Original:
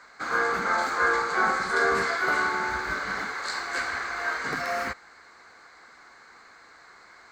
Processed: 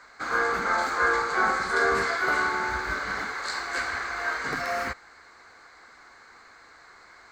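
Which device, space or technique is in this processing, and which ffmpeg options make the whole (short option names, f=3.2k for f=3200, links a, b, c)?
low shelf boost with a cut just above: -af "lowshelf=f=95:g=6.5,equalizer=f=180:t=o:w=0.5:g=-4"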